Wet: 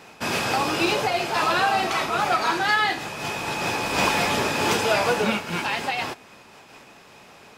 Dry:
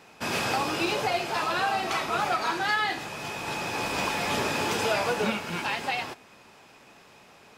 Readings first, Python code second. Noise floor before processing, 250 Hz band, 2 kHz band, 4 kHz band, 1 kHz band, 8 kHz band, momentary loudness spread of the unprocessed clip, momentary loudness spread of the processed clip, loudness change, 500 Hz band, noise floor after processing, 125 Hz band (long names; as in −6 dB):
−54 dBFS, +5.0 dB, +5.0 dB, +5.0 dB, +5.0 dB, +5.0 dB, 6 LU, 7 LU, +5.0 dB, +5.0 dB, −49 dBFS, +4.5 dB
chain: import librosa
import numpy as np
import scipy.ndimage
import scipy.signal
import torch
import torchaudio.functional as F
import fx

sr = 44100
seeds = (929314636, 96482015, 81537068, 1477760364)

y = fx.am_noise(x, sr, seeds[0], hz=5.7, depth_pct=55)
y = F.gain(torch.from_numpy(y), 8.0).numpy()